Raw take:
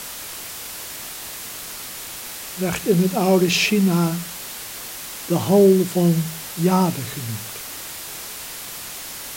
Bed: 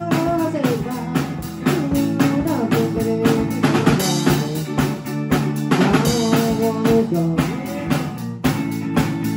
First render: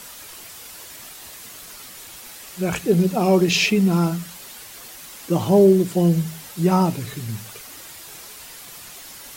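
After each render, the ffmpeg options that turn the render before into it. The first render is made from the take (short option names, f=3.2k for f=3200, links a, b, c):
-af "afftdn=nr=8:nf=-34"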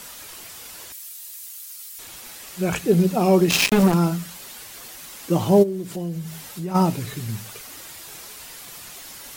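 -filter_complex "[0:a]asettb=1/sr,asplit=3[a][b][c];[a]atrim=end=0.924[d];[b]atrim=start=0.92:end=1.99,asetpts=PTS-STARTPTS,afade=t=in:d=0.004:c=qsin,afade=t=out:st=1.066:d=0.004:c=qsin,aderivative[e];[c]atrim=start=1.986[f];[d][e]acrossfade=d=0.004:c1=hsin:c2=qsin[g];[g][f]acrossfade=d=0.004:c1=qsin:c2=hsin,asettb=1/sr,asplit=3[h][i][j];[h]atrim=end=3.504[k];[i]atrim=start=3.5:end=3.94,asetpts=PTS-STARTPTS,afade=t=in:d=0.004:c=qsin,afade=t=out:st=0.436:d=0.004:c=qsin,acrusher=bits=2:mix=0:aa=0.5[l];[j]atrim=start=3.936[m];[k][l]acrossfade=d=0.004:c1=hsin:c2=qsin[n];[n][m]acrossfade=d=0.004:c1=qsin:c2=hsin,asplit=3[o][p][q];[o]afade=t=out:st=5.62:d=0.02[r];[p]acompressor=threshold=-31dB:ratio=2.5:attack=3.2:release=140:knee=1:detection=peak,afade=t=in:st=5.62:d=0.02,afade=t=out:st=6.74:d=0.02[s];[q]afade=t=in:st=6.74:d=0.02[t];[r][s][t]amix=inputs=3:normalize=0"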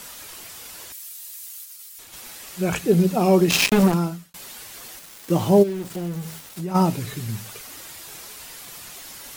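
-filter_complex "[0:a]asplit=3[a][b][c];[a]afade=t=out:st=1.63:d=0.02[d];[b]agate=range=-33dB:threshold=-36dB:ratio=3:release=100:detection=peak,afade=t=in:st=1.63:d=0.02,afade=t=out:st=2.12:d=0.02[e];[c]afade=t=in:st=2.12:d=0.02[f];[d][e][f]amix=inputs=3:normalize=0,asettb=1/sr,asplit=3[g][h][i];[g]atrim=end=4.994[j];[h]atrim=start=4.99:end=6.61,asetpts=PTS-STARTPTS,afade=t=in:d=0.004:c=qsin,afade=t=out:st=1.616:d=0.004:c=qsin,aeval=exprs='val(0)*gte(abs(val(0)),0.0178)':c=same[k];[i]atrim=start=6.606[l];[j][k]acrossfade=d=0.004:c1=hsin:c2=qsin[m];[m][l]acrossfade=d=0.004:c1=qsin:c2=hsin,asplit=2[n][o];[n]atrim=end=4.34,asetpts=PTS-STARTPTS,afade=t=out:st=3.84:d=0.5[p];[o]atrim=start=4.34,asetpts=PTS-STARTPTS,afade=t=in:d=0.004:c=hsin[q];[p][q]concat=n=2:v=0:a=1"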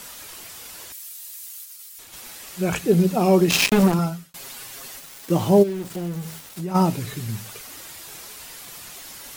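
-filter_complex "[0:a]asettb=1/sr,asplit=3[a][b][c];[a]atrim=end=3.984[d];[b]atrim=start=3.98:end=5.28,asetpts=PTS-STARTPTS,afade=t=in:d=0.004:c=qsin,afade=t=out:st=1.296:d=0.004:c=qsin,aecho=1:1:7.4:0.65,atrim=end_sample=57330[e];[c]atrim=start=5.276[f];[d][e]acrossfade=d=0.004:c1=hsin:c2=qsin[g];[g][f]acrossfade=d=0.004:c1=qsin:c2=hsin"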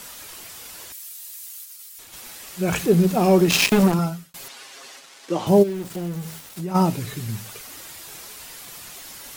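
-filter_complex "[0:a]asettb=1/sr,asplit=3[a][b][c];[a]atrim=end=2.684[d];[b]atrim=start=2.68:end=3.77,asetpts=PTS-STARTPTS,afade=t=in:d=0.004:c=qsin,afade=t=out:st=1.086:d=0.004:c=qsin,aeval=exprs='val(0)+0.5*0.0299*sgn(val(0))':c=same[e];[c]atrim=start=3.766[f];[d][e]acrossfade=d=0.004:c1=hsin:c2=qsin[g];[g][f]acrossfade=d=0.004:c1=qsin:c2=hsin,asettb=1/sr,asplit=3[h][i][j];[h]atrim=end=4.484[k];[i]atrim=start=4.48:end=5.47,asetpts=PTS-STARTPTS,afade=t=in:d=0.004:c=qsin,afade=t=out:st=0.986:d=0.004:c=qsin,highpass=320,lowpass=6.5k[l];[j]atrim=start=5.466[m];[k][l]acrossfade=d=0.004:c1=hsin:c2=qsin[n];[n][m]acrossfade=d=0.004:c1=qsin:c2=hsin"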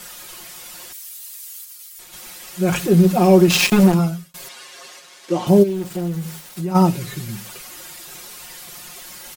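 -af "aecho=1:1:5.6:0.77"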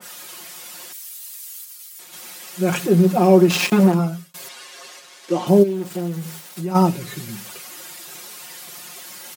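-af "highpass=160,adynamicequalizer=threshold=0.02:dfrequency=2000:dqfactor=0.7:tfrequency=2000:tqfactor=0.7:attack=5:release=100:ratio=0.375:range=3:mode=cutabove:tftype=highshelf"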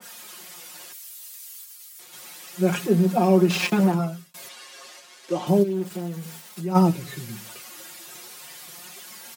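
-filter_complex "[0:a]flanger=delay=4.3:depth=4.9:regen=50:speed=0.32:shape=sinusoidal,acrossover=split=270|5200[a][b][c];[c]asoftclip=type=tanh:threshold=-32.5dB[d];[a][b][d]amix=inputs=3:normalize=0"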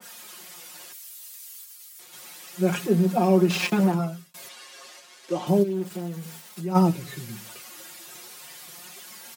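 -af "volume=-1.5dB"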